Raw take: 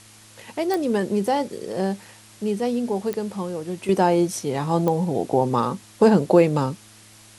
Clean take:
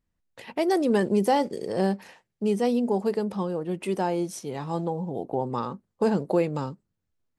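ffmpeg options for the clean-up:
-af "adeclick=t=4,bandreject=f=107.8:t=h:w=4,bandreject=f=215.6:t=h:w=4,bandreject=f=323.4:t=h:w=4,afwtdn=0.0045,asetnsamples=n=441:p=0,asendcmd='3.89 volume volume -8dB',volume=0dB"

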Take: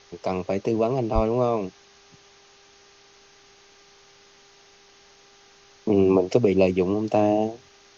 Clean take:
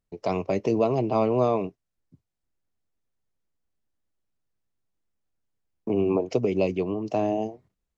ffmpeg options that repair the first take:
-filter_complex "[0:a]bandreject=f=399.6:t=h:w=4,bandreject=f=799.2:t=h:w=4,bandreject=f=1.1988k:t=h:w=4,bandreject=f=1.5984k:t=h:w=4,bandreject=f=1.998k:t=h:w=4,asplit=3[a][b][c];[a]afade=t=out:st=1.14:d=0.02[d];[b]highpass=f=140:w=0.5412,highpass=f=140:w=1.3066,afade=t=in:st=1.14:d=0.02,afade=t=out:st=1.26:d=0.02[e];[c]afade=t=in:st=1.26:d=0.02[f];[d][e][f]amix=inputs=3:normalize=0,afwtdn=0.0032,asetnsamples=n=441:p=0,asendcmd='3.13 volume volume -5dB',volume=0dB"

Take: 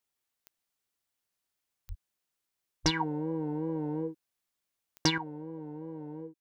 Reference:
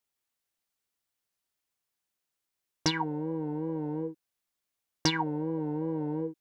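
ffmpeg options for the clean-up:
-filter_complex "[0:a]adeclick=t=4,asplit=3[a][b][c];[a]afade=t=out:st=1.88:d=0.02[d];[b]highpass=f=140:w=0.5412,highpass=f=140:w=1.3066,afade=t=in:st=1.88:d=0.02,afade=t=out:st=2:d=0.02[e];[c]afade=t=in:st=2:d=0.02[f];[d][e][f]amix=inputs=3:normalize=0,asplit=3[g][h][i];[g]afade=t=out:st=2.83:d=0.02[j];[h]highpass=f=140:w=0.5412,highpass=f=140:w=1.3066,afade=t=in:st=2.83:d=0.02,afade=t=out:st=2.95:d=0.02[k];[i]afade=t=in:st=2.95:d=0.02[l];[j][k][l]amix=inputs=3:normalize=0,asetnsamples=n=441:p=0,asendcmd='5.18 volume volume 9.5dB',volume=0dB"

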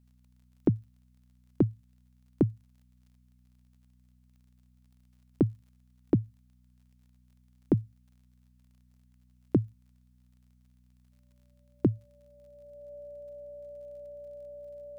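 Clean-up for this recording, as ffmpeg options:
-af "adeclick=t=4,bandreject=f=61.9:t=h:w=4,bandreject=f=123.8:t=h:w=4,bandreject=f=185.7:t=h:w=4,bandreject=f=247.6:t=h:w=4,bandreject=f=580:w=30"

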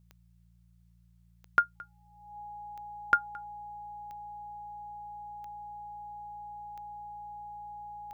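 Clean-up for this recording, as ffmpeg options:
-af "adeclick=t=4,bandreject=f=57.6:t=h:w=4,bandreject=f=115.2:t=h:w=4,bandreject=f=172.8:t=h:w=4,bandreject=f=830:w=30,agate=range=-21dB:threshold=-54dB"

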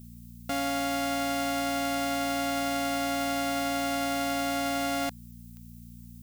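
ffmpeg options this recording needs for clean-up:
-af "adeclick=t=4,bandreject=f=58.6:t=h:w=4,bandreject=f=117.2:t=h:w=4,bandreject=f=175.8:t=h:w=4,bandreject=f=234.4:t=h:w=4,agate=range=-21dB:threshold=-39dB"

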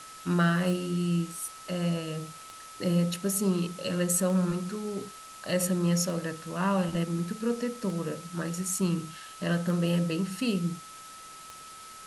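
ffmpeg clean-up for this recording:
-af "adeclick=t=4,bandreject=f=1.3k:w=30,afwtdn=0.0045"

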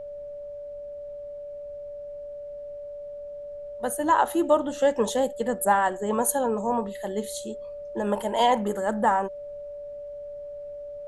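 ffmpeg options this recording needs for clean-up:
-af "bandreject=f=580:w=30,agate=range=-21dB:threshold=-30dB"

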